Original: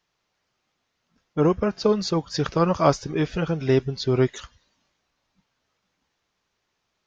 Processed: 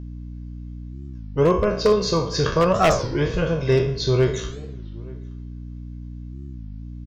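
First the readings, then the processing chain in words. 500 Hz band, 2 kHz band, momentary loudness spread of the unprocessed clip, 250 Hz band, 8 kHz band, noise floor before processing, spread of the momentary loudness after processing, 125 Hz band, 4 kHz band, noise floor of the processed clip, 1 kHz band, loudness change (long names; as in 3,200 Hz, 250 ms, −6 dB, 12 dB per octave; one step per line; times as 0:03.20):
+3.5 dB, +5.5 dB, 5 LU, −0.5 dB, can't be measured, −77 dBFS, 18 LU, +3.5 dB, +4.5 dB, −35 dBFS, +3.0 dB, +2.5 dB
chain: peak hold with a decay on every bin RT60 0.49 s
low-shelf EQ 85 Hz +6 dB
comb filter 1.9 ms, depth 59%
mains hum 60 Hz, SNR 11 dB
wave folding −8.5 dBFS
slap from a distant wall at 150 metres, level −23 dB
spring reverb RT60 1.9 s, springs 57 ms, chirp 50 ms, DRR 18 dB
wow of a warped record 33 1/3 rpm, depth 250 cents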